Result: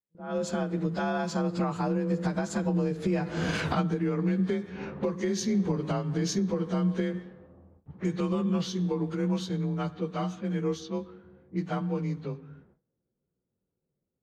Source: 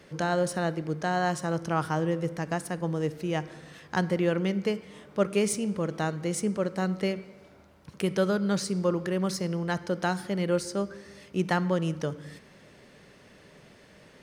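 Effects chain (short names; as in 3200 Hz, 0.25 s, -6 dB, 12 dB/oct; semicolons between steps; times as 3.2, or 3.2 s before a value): inharmonic rescaling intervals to 91%; Doppler pass-by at 3.65, 18 m/s, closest 1.2 m; recorder AGC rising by 68 dB/s; gate with hold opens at -56 dBFS; low shelf 200 Hz +7 dB; low-pass opened by the level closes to 570 Hz, open at -33 dBFS; gain +6 dB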